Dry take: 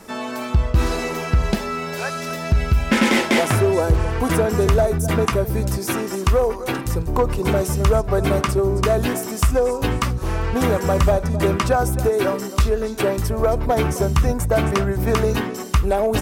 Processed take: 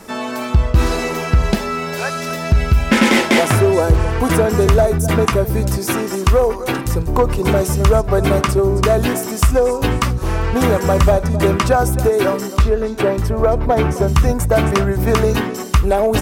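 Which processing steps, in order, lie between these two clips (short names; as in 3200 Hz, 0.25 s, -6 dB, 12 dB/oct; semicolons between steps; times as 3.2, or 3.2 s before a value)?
12.57–14.08 high shelf 4400 Hz -10 dB; gain +4 dB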